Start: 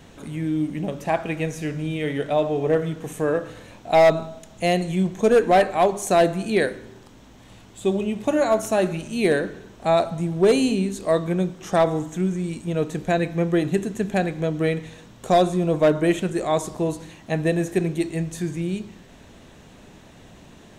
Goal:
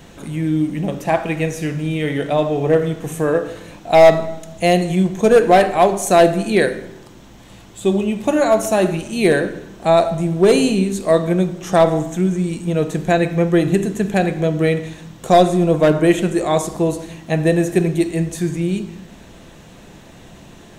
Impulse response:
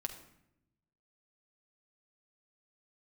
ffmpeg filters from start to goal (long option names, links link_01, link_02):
-filter_complex "[0:a]asplit=2[link_01][link_02];[link_02]highshelf=frequency=9300:gain=7.5[link_03];[1:a]atrim=start_sample=2205[link_04];[link_03][link_04]afir=irnorm=-1:irlink=0,volume=1.5dB[link_05];[link_01][link_05]amix=inputs=2:normalize=0,volume=-1dB"